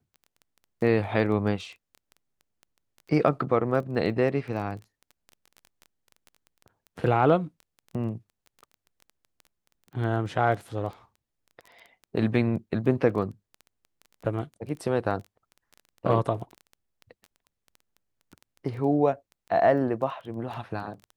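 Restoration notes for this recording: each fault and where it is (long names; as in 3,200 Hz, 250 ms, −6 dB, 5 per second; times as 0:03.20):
surface crackle 11 per second −35 dBFS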